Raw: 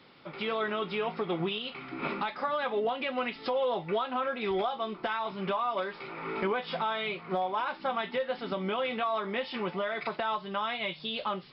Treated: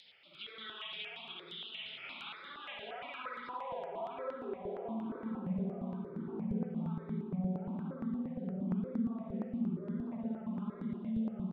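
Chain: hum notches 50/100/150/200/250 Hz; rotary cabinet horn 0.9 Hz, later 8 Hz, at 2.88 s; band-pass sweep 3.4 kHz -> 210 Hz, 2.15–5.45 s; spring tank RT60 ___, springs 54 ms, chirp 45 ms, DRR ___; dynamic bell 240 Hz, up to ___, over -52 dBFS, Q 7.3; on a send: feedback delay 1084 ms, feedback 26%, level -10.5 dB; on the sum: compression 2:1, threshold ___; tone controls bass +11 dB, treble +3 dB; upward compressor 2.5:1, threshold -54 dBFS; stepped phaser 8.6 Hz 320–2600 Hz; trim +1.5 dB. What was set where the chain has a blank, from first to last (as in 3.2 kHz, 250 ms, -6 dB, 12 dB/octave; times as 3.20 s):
1.3 s, -8 dB, +6 dB, -45 dBFS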